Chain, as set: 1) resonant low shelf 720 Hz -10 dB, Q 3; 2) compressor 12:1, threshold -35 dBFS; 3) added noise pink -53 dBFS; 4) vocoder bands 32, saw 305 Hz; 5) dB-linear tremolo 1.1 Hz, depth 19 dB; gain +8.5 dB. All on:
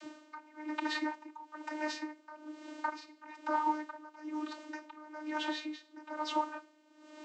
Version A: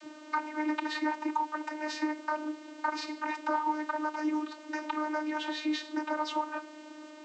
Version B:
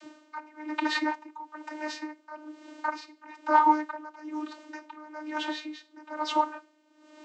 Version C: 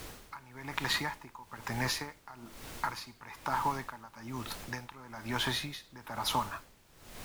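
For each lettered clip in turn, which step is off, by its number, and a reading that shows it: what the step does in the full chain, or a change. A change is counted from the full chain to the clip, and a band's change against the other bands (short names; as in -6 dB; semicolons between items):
5, momentary loudness spread change -8 LU; 2, mean gain reduction 4.5 dB; 4, 4 kHz band +8.5 dB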